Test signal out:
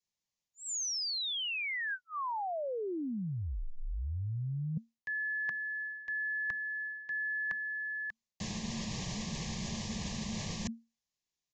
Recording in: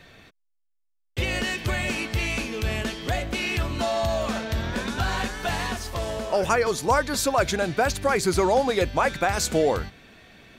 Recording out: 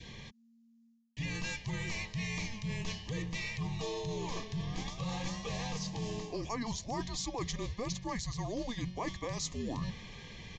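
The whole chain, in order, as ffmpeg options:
-af "bass=f=250:g=6,treble=f=4k:g=8,aresample=16000,aresample=44100,afreqshift=-230,asuperstop=centerf=1400:order=8:qfactor=3.2,adynamicequalizer=threshold=0.0112:dfrequency=1100:dqfactor=1.6:tfrequency=1100:tqfactor=1.6:attack=5:release=100:ratio=0.375:range=2.5:mode=boostabove:tftype=bell,areverse,acompressor=threshold=-35dB:ratio=8,areverse"

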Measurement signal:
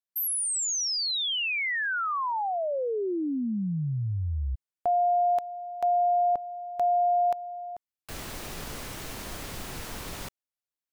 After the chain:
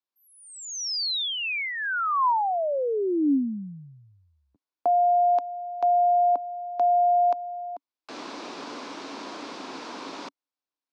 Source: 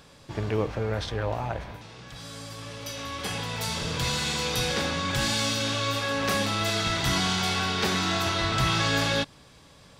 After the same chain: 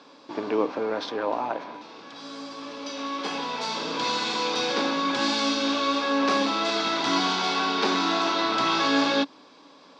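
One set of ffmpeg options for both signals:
-af "highpass=f=250:w=0.5412,highpass=f=250:w=1.3066,equalizer=f=280:t=q:w=4:g=8,equalizer=f=1k:t=q:w=4:g=6,equalizer=f=1.9k:t=q:w=4:g=-6,equalizer=f=3k:t=q:w=4:g=-4,lowpass=f=5.3k:w=0.5412,lowpass=f=5.3k:w=1.3066,volume=2.5dB"

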